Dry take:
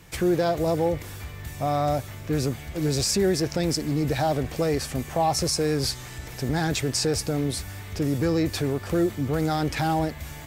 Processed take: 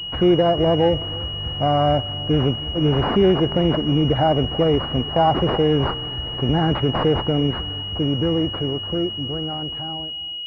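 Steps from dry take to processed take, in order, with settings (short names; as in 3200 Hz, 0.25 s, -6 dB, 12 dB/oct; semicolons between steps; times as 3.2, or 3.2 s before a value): ending faded out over 3.35 s; analogue delay 0.321 s, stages 2048, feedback 34%, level -20.5 dB; pulse-width modulation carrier 2900 Hz; gain +6.5 dB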